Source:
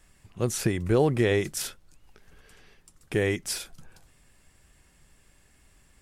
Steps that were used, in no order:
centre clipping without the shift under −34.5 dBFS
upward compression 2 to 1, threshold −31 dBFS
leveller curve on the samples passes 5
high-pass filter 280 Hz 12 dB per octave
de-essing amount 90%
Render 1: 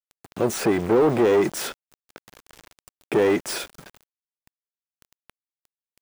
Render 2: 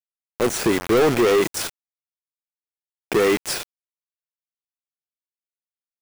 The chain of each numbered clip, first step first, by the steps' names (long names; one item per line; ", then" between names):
leveller curve on the samples, then upward compression, then high-pass filter, then centre clipping without the shift, then de-essing
high-pass filter, then centre clipping without the shift, then upward compression, then de-essing, then leveller curve on the samples